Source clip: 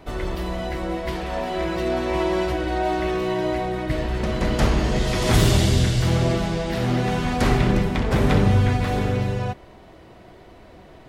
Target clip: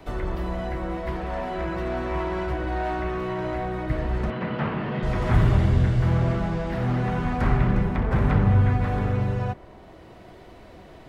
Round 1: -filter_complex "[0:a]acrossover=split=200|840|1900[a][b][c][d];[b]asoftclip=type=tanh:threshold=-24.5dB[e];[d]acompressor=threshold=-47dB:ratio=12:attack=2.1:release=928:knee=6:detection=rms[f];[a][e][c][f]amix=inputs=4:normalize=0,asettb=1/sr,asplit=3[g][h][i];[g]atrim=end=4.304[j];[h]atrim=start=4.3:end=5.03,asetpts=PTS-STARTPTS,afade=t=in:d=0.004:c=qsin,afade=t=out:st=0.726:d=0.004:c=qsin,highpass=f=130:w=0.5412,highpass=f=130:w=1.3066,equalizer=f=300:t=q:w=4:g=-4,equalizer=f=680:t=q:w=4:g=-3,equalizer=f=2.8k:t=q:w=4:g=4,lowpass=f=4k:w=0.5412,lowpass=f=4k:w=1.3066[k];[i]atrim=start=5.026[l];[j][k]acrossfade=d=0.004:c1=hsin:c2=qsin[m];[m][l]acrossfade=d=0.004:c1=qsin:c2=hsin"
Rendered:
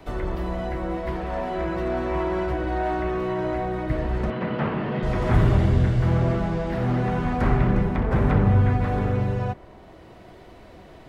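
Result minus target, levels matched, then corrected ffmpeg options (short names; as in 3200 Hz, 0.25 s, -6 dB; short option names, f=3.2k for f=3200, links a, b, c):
soft clip: distortion -5 dB
-filter_complex "[0:a]acrossover=split=200|840|1900[a][b][c][d];[b]asoftclip=type=tanh:threshold=-31dB[e];[d]acompressor=threshold=-47dB:ratio=12:attack=2.1:release=928:knee=6:detection=rms[f];[a][e][c][f]amix=inputs=4:normalize=0,asettb=1/sr,asplit=3[g][h][i];[g]atrim=end=4.304[j];[h]atrim=start=4.3:end=5.03,asetpts=PTS-STARTPTS,afade=t=in:d=0.004:c=qsin,afade=t=out:st=0.726:d=0.004:c=qsin,highpass=f=130:w=0.5412,highpass=f=130:w=1.3066,equalizer=f=300:t=q:w=4:g=-4,equalizer=f=680:t=q:w=4:g=-3,equalizer=f=2.8k:t=q:w=4:g=4,lowpass=f=4k:w=0.5412,lowpass=f=4k:w=1.3066[k];[i]atrim=start=5.026[l];[j][k]acrossfade=d=0.004:c1=hsin:c2=qsin[m];[m][l]acrossfade=d=0.004:c1=qsin:c2=hsin"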